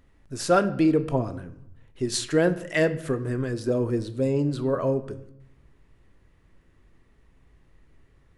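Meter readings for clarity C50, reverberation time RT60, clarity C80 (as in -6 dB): 15.0 dB, 0.75 s, 17.5 dB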